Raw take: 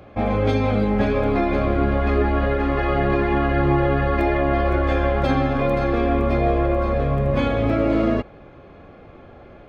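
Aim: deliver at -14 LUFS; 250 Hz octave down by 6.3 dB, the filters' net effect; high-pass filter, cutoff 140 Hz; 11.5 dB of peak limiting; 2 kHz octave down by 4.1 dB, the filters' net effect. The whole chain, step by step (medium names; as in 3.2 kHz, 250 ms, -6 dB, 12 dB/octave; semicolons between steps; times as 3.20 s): high-pass 140 Hz; peaking EQ 250 Hz -8 dB; peaking EQ 2 kHz -5 dB; trim +16.5 dB; peak limiter -6 dBFS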